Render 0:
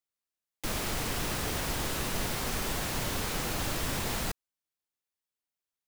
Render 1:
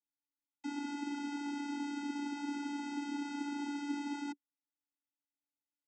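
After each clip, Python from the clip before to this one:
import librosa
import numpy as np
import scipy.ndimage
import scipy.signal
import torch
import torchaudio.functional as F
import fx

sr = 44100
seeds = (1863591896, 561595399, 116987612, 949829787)

y = fx.vocoder(x, sr, bands=16, carrier='square', carrier_hz=287.0)
y = F.gain(torch.from_numpy(y), -3.5).numpy()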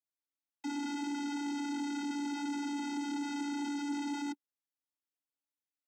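y = scipy.signal.sosfilt(scipy.signal.butter(2, 180.0, 'highpass', fs=sr, output='sos'), x)
y = fx.leveller(y, sr, passes=2)
y = F.gain(torch.from_numpy(y), -1.0).numpy()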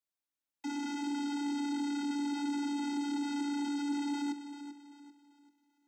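y = fx.echo_feedback(x, sr, ms=390, feedback_pct=36, wet_db=-11)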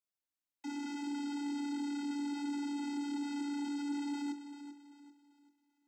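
y = fx.doubler(x, sr, ms=24.0, db=-12.0)
y = F.gain(torch.from_numpy(y), -4.5).numpy()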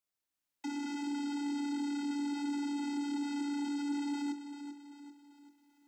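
y = fx.recorder_agc(x, sr, target_db=-35.0, rise_db_per_s=5.8, max_gain_db=30)
y = F.gain(torch.from_numpy(y), 2.0).numpy()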